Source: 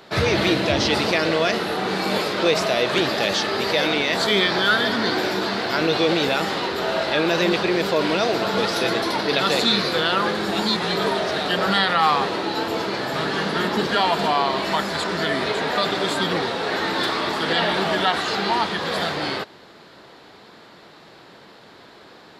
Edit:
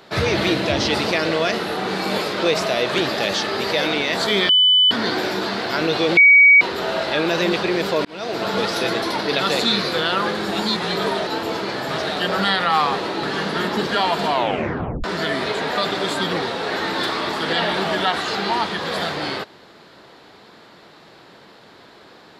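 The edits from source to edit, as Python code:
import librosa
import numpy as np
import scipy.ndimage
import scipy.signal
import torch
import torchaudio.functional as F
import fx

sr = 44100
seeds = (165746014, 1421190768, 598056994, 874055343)

y = fx.edit(x, sr, fx.bleep(start_s=4.49, length_s=0.42, hz=3000.0, db=-10.5),
    fx.bleep(start_s=6.17, length_s=0.44, hz=2260.0, db=-6.5),
    fx.fade_in_span(start_s=8.05, length_s=0.43),
    fx.move(start_s=12.52, length_s=0.71, to_s=11.27),
    fx.tape_stop(start_s=14.31, length_s=0.73), tone=tone)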